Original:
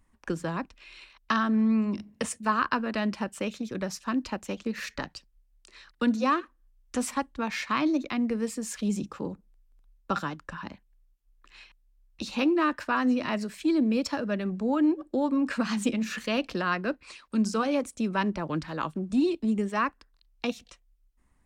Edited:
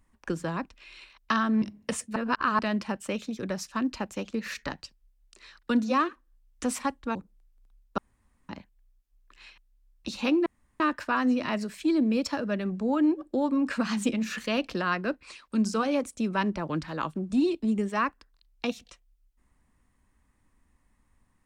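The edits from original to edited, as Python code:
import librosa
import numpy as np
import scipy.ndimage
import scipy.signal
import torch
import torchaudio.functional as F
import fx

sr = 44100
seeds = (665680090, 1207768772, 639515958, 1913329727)

y = fx.edit(x, sr, fx.cut(start_s=1.62, length_s=0.32),
    fx.reverse_span(start_s=2.48, length_s=0.43),
    fx.cut(start_s=7.47, length_s=1.82),
    fx.room_tone_fill(start_s=10.12, length_s=0.51),
    fx.insert_room_tone(at_s=12.6, length_s=0.34), tone=tone)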